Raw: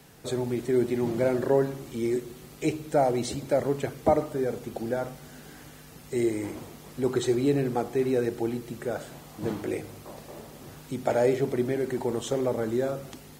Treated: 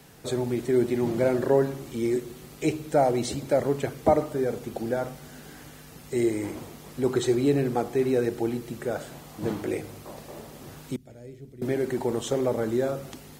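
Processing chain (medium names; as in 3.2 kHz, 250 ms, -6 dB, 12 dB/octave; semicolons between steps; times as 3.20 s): 10.96–11.62 s: amplifier tone stack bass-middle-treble 10-0-1; trim +1.5 dB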